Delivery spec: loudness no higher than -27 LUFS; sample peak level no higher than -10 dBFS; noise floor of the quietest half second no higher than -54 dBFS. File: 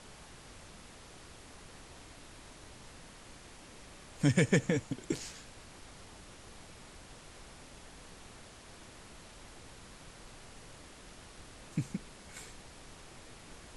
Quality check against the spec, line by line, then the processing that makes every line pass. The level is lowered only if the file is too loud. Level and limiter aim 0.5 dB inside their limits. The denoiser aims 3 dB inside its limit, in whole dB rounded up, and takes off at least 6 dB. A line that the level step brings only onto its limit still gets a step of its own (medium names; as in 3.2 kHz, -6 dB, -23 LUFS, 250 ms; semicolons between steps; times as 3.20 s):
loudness -34.0 LUFS: pass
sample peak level -14.5 dBFS: pass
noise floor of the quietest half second -53 dBFS: fail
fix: noise reduction 6 dB, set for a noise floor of -53 dBFS